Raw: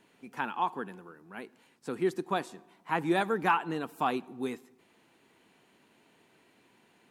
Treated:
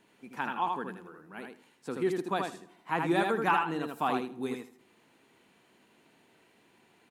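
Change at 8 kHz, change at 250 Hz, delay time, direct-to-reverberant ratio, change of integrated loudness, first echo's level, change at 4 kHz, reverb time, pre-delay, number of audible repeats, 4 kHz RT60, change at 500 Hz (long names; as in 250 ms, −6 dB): +0.5 dB, +0.5 dB, 79 ms, no reverb audible, +0.5 dB, −4.0 dB, +0.5 dB, no reverb audible, no reverb audible, 2, no reverb audible, +0.5 dB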